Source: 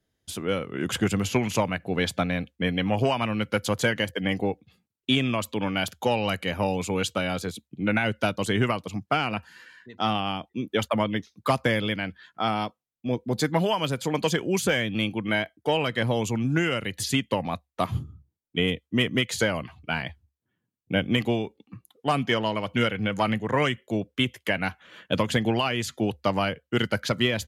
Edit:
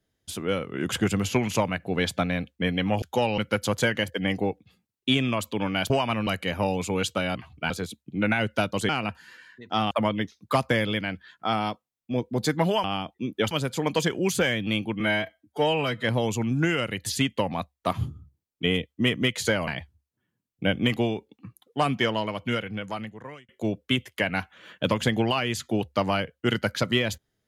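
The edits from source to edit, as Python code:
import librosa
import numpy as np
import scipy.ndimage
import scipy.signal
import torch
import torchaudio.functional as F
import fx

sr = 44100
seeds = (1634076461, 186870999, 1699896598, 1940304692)

y = fx.edit(x, sr, fx.swap(start_s=3.02, length_s=0.37, other_s=5.91, other_length_s=0.36),
    fx.cut(start_s=8.54, length_s=0.63),
    fx.move(start_s=10.19, length_s=0.67, to_s=13.79),
    fx.stretch_span(start_s=15.28, length_s=0.69, factor=1.5),
    fx.move(start_s=19.61, length_s=0.35, to_s=7.35),
    fx.fade_out_span(start_s=22.31, length_s=1.46), tone=tone)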